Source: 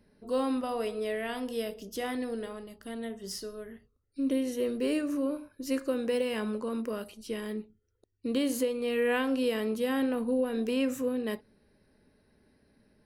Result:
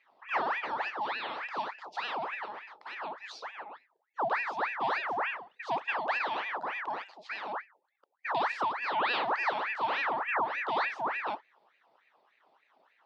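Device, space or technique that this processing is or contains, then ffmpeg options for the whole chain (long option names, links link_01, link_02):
voice changer toy: -af "aeval=exprs='val(0)*sin(2*PI*1300*n/s+1300*0.7/3.4*sin(2*PI*3.4*n/s))':channel_layout=same,highpass=450,equalizer=frequency=860:width_type=q:width=4:gain=5,equalizer=frequency=1500:width_type=q:width=4:gain=-5,equalizer=frequency=2200:width_type=q:width=4:gain=-6,lowpass=frequency=4200:width=0.5412,lowpass=frequency=4200:width=1.3066,volume=2.5dB"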